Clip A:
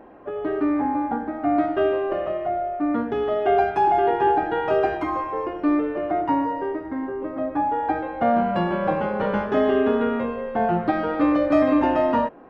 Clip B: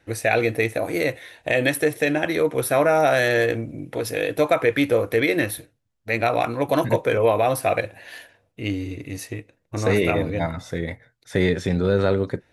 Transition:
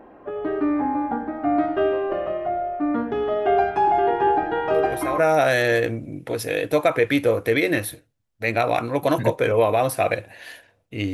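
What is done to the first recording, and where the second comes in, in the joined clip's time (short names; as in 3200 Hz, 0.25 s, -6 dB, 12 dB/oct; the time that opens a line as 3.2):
clip A
4.74 add clip B from 2.4 s 0.44 s -9 dB
5.18 switch to clip B from 2.84 s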